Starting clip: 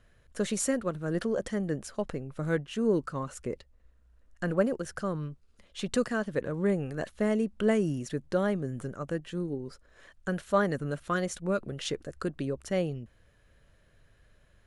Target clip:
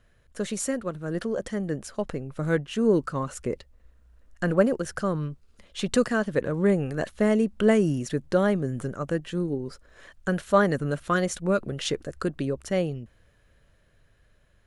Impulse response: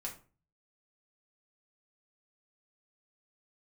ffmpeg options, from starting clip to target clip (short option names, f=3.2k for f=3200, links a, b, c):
-af "dynaudnorm=f=320:g=13:m=5.5dB"